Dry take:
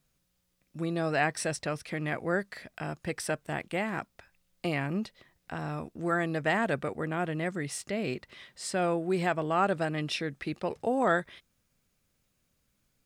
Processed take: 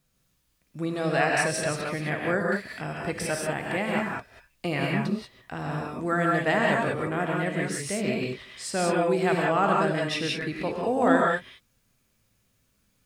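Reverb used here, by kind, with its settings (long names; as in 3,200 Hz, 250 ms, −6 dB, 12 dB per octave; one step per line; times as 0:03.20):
reverb whose tail is shaped and stops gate 210 ms rising, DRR −2 dB
level +1.5 dB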